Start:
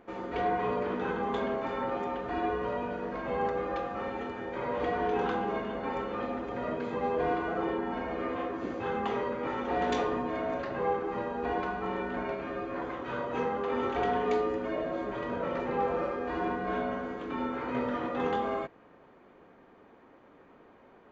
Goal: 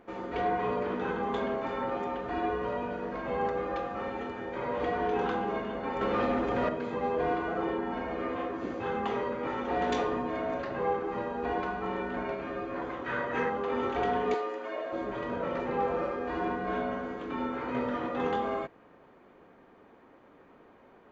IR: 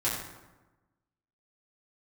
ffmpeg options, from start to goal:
-filter_complex "[0:a]asettb=1/sr,asplit=3[a][b][c];[a]atrim=end=6.014[d];[b]atrim=start=6.01:end=6.69,asetpts=PTS-STARTPTS,afade=t=in:d=0.004:c=qsin,afade=t=out:st=0.676:d=0.004:c=qsin,aeval=exprs='0.075*sin(PI/2*1.58*val(0)/0.075)':c=same[e];[c]atrim=start=6.686[f];[d][e]acrossfade=d=0.004:c1=hsin:c2=qsin[g];[g][f]acrossfade=d=0.004:c1=qsin:c2=hsin,asettb=1/sr,asplit=3[h][i][j];[h]atrim=end=13.064[k];[i]atrim=start=13.06:end=13.5,asetpts=PTS-STARTPTS,afade=t=in:d=0.004:c=qsin,afade=t=out:st=0.436:d=0.004:c=qsin,equalizer=f=1.8k:w=2.3:g=11[l];[j]atrim=start=13.496[m];[k][l]acrossfade=d=0.004:c1=hsin:c2=qsin[n];[n][m]acrossfade=d=0.004:c1=qsin:c2=hsin,asettb=1/sr,asplit=3[o][p][q];[o]atrim=end=14.344[r];[p]atrim=start=14.34:end=14.93,asetpts=PTS-STARTPTS,afade=t=in:d=0.004:c=qsin,afade=t=out:st=0.586:d=0.004:c=qsin,highpass=520[s];[q]atrim=start=14.926[t];[r][s]acrossfade=d=0.004:c1=hsin:c2=qsin[u];[u][t]acrossfade=d=0.004:c1=qsin:c2=hsin"

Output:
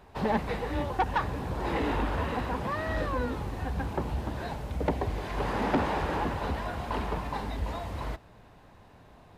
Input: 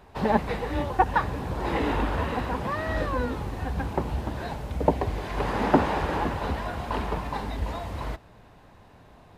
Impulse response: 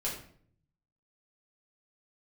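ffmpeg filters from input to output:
-af "asoftclip=type=tanh:threshold=-17dB,volume=-2dB"

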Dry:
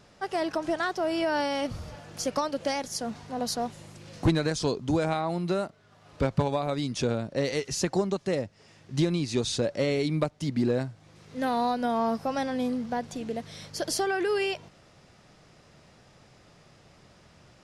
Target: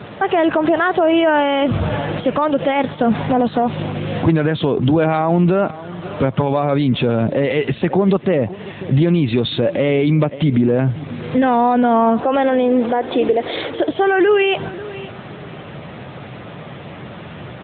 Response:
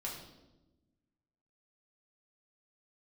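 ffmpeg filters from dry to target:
-filter_complex "[0:a]asettb=1/sr,asplit=3[a][b][c];[a]atrim=end=10.844[d];[b]atrim=start=10.84:end=11.5,asetpts=PTS-STARTPTS,afade=t=in:d=0.004:c=qsin,afade=t=out:st=0.656:d=0.004:c=qsin,acompressor=mode=upward:threshold=-49dB:ratio=2.5[e];[c]atrim=start=11.496[f];[d][e]acrossfade=d=0.004:c1=hsin:c2=qsin[g];[g][f]acrossfade=d=0.004:c1=qsin:c2=hsin,asettb=1/sr,asplit=3[h][i][j];[h]atrim=end=12.204[k];[i]atrim=start=12.2:end=13.89,asetpts=PTS-STARTPTS,afade=t=in:d=0.004:c=qsin,afade=t=out:st=1.686:d=0.004:c=qsin,lowshelf=f=250:t=q:w=3:g=-10.5[l];[j]atrim=start=13.886[m];[k][l]acrossfade=d=0.004:c1=hsin:c2=qsin[n];[n][m]acrossfade=d=0.004:c1=qsin:c2=hsin,acompressor=threshold=-30dB:ratio=16,asplit=2[o][p];[p]aecho=0:1:540|1080:0.0794|0.0183[q];[o][q]amix=inputs=2:normalize=0,alimiter=level_in=31dB:limit=-1dB:release=50:level=0:latency=1,volume=-6dB" -ar 8000 -c:a libopencore_amrnb -b:a 10200

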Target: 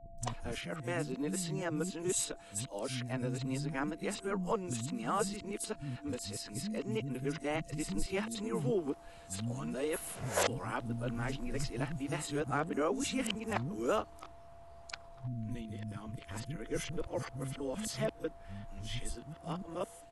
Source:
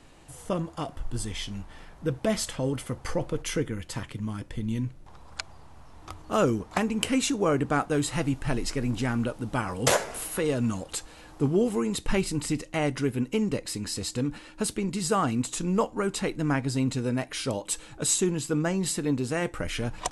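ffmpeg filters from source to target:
-filter_complex "[0:a]areverse,acrossover=split=230|5600[a][b][c];[c]adelay=180[d];[b]adelay=220[e];[a][e][d]amix=inputs=3:normalize=0,aeval=exprs='val(0)+0.00447*sin(2*PI*680*n/s)':c=same,volume=-7.5dB"

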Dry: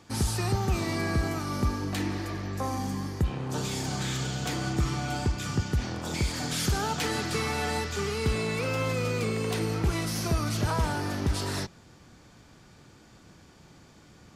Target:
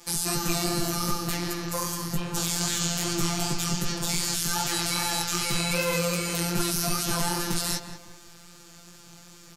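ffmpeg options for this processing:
-filter_complex "[0:a]aemphasis=mode=production:type=75kf,afftfilt=real='hypot(re,im)*cos(PI*b)':imag='0':win_size=1024:overlap=0.75,lowshelf=f=330:g=-5,acrossover=split=110[a][b];[a]acontrast=55[c];[c][b]amix=inputs=2:normalize=0,alimiter=limit=-14dB:level=0:latency=1:release=75,bandreject=f=60:t=h:w=6,bandreject=f=120:t=h:w=6,bandreject=f=180:t=h:w=6,bandreject=f=240:t=h:w=6,bandreject=f=300:t=h:w=6,bandreject=f=360:t=h:w=6,bandreject=f=420:t=h:w=6,bandreject=f=480:t=h:w=6,bandreject=f=540:t=h:w=6,flanger=delay=19.5:depth=5.2:speed=1.7,atempo=1.5,asplit=2[d][e];[e]adelay=185,lowpass=f=1.9k:p=1,volume=-8dB,asplit=2[f][g];[g]adelay=185,lowpass=f=1.9k:p=1,volume=0.42,asplit=2[h][i];[i]adelay=185,lowpass=f=1.9k:p=1,volume=0.42,asplit=2[j][k];[k]adelay=185,lowpass=f=1.9k:p=1,volume=0.42,asplit=2[l][m];[m]adelay=185,lowpass=f=1.9k:p=1,volume=0.42[n];[f][h][j][l][n]amix=inputs=5:normalize=0[o];[d][o]amix=inputs=2:normalize=0,volume=9dB"

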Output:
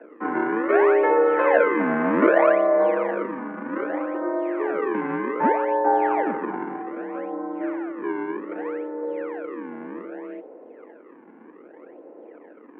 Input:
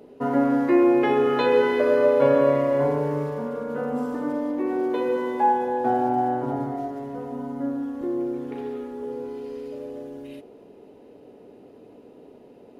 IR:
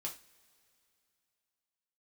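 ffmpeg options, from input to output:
-filter_complex "[0:a]acrossover=split=310|820[a][b][c];[a]acompressor=threshold=-38dB:ratio=6[d];[b]acrusher=samples=41:mix=1:aa=0.000001:lfo=1:lforange=65.6:lforate=0.64[e];[d][e][c]amix=inputs=3:normalize=0,highpass=f=170:t=q:w=0.5412,highpass=f=170:t=q:w=1.307,lowpass=f=2k:t=q:w=0.5176,lowpass=f=2k:t=q:w=0.7071,lowpass=f=2k:t=q:w=1.932,afreqshift=55,volume=4dB"

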